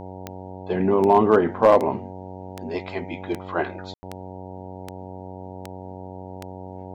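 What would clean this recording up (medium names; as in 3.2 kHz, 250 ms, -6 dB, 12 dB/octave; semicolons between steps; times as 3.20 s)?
clip repair -6.5 dBFS; de-click; de-hum 93.3 Hz, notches 10; room tone fill 3.94–4.03 s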